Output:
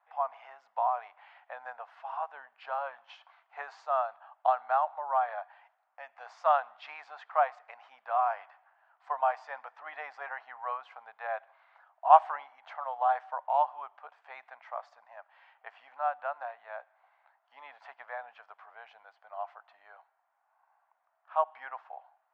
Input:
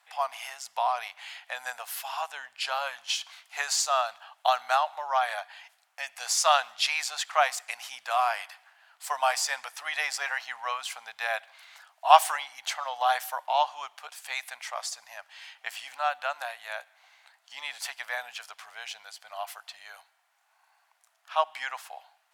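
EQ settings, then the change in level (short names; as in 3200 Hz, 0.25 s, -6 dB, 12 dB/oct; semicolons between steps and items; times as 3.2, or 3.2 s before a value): Butterworth band-pass 580 Hz, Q 0.61; air absorption 74 m; -1.0 dB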